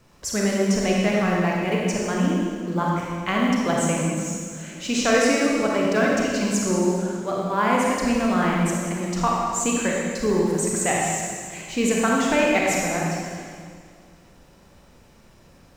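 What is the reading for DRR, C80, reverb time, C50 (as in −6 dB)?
−3.0 dB, 0.5 dB, 2.0 s, −1.5 dB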